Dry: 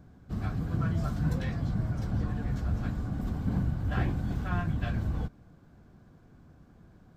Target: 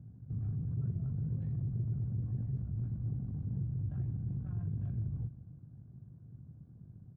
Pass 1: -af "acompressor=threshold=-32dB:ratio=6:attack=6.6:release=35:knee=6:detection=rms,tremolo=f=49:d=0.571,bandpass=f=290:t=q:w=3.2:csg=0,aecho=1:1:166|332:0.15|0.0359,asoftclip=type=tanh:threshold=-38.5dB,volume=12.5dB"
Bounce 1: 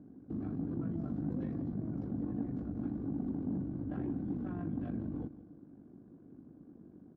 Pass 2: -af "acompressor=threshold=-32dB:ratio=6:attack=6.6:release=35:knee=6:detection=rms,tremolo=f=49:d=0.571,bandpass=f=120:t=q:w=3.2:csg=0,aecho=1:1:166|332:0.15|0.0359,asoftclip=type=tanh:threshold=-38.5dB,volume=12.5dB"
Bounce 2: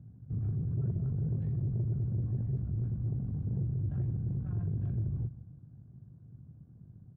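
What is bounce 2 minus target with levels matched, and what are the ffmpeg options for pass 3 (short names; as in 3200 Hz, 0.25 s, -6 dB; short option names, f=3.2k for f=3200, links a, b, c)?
compressor: peak gain reduction -5 dB
-af "acompressor=threshold=-38dB:ratio=6:attack=6.6:release=35:knee=6:detection=rms,tremolo=f=49:d=0.571,bandpass=f=120:t=q:w=3.2:csg=0,aecho=1:1:166|332:0.15|0.0359,asoftclip=type=tanh:threshold=-38.5dB,volume=12.5dB"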